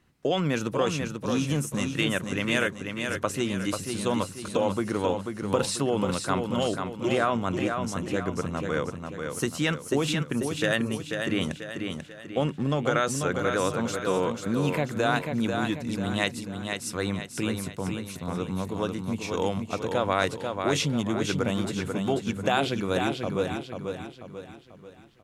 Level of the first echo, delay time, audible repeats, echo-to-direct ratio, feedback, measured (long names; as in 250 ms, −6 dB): −5.5 dB, 490 ms, 5, −4.5 dB, 44%